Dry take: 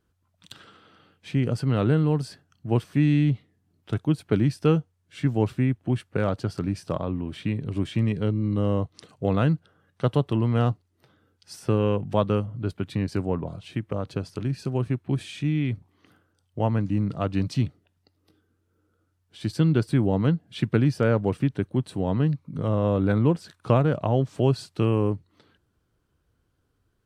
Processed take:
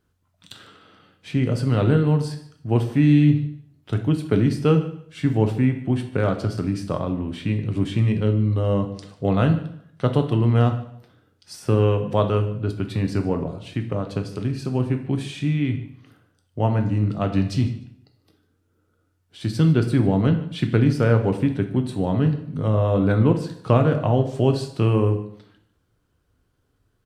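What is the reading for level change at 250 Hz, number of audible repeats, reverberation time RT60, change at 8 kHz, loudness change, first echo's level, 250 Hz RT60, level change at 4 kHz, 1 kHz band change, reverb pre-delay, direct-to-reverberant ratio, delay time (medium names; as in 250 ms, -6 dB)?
+3.5 dB, 2, 0.65 s, no reading, +3.5 dB, -19.5 dB, 0.70 s, +3.0 dB, +3.0 dB, 5 ms, 5.5 dB, 149 ms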